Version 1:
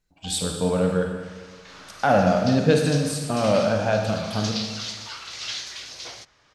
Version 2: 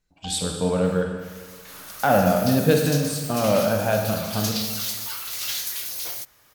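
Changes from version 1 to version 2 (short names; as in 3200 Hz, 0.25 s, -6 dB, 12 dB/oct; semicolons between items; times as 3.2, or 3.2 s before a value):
first sound +5.5 dB; second sound: remove LPF 5800 Hz 24 dB/oct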